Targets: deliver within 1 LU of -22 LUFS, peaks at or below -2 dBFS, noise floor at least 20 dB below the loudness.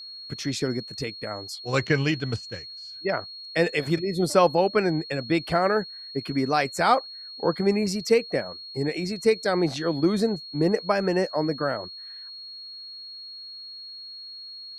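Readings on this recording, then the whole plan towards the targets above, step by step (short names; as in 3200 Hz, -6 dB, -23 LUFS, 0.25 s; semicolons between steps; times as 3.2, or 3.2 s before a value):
steady tone 4300 Hz; tone level -38 dBFS; loudness -25.5 LUFS; peak -6.0 dBFS; loudness target -22.0 LUFS
-> notch 4300 Hz, Q 30; gain +3.5 dB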